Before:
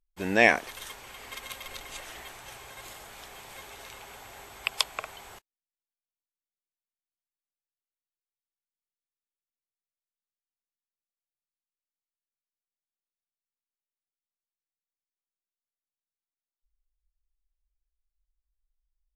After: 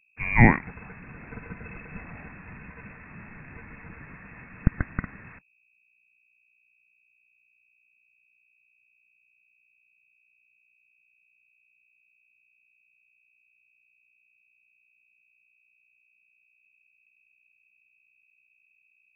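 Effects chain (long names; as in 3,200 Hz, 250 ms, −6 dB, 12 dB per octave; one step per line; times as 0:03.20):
mains hum 60 Hz, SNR 30 dB
voice inversion scrambler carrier 2,600 Hz
low shelf with overshoot 290 Hz +12 dB, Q 1.5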